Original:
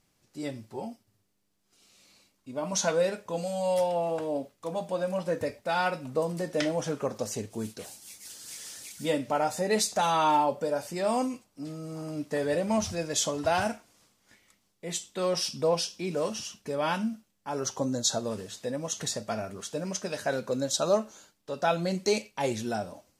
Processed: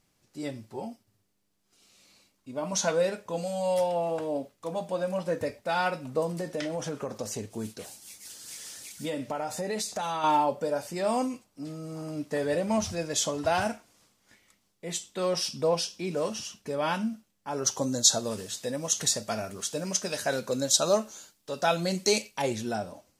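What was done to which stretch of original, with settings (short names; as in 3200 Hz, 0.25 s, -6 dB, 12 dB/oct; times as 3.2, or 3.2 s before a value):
6.4–10.24 compressor 5:1, threshold -28 dBFS
17.66–22.42 high shelf 3300 Hz +9 dB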